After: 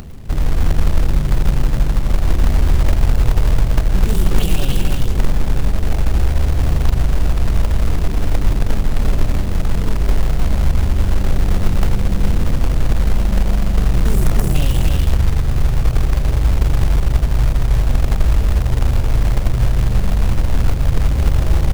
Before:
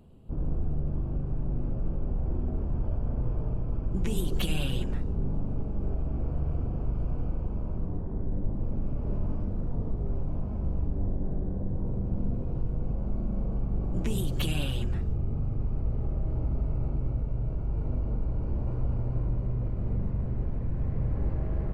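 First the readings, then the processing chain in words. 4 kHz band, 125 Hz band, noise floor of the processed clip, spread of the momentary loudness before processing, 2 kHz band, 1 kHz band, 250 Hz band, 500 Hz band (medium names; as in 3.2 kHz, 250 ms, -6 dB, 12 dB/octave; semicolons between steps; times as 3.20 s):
+12.5 dB, +13.0 dB, -19 dBFS, 3 LU, +18.0 dB, +18.0 dB, +10.0 dB, +11.5 dB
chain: bass shelf 87 Hz +11.5 dB; in parallel at +2 dB: peak limiter -17.5 dBFS, peak gain reduction 10.5 dB; on the sum: upward compressor, threshold -24 dBFS; spectral selection erased 12.73–14.54 s, 2–4.9 kHz; dynamic bell 740 Hz, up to +5 dB, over -47 dBFS, Q 1.2; delay 302 ms -3.5 dB; short-mantissa float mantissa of 2-bit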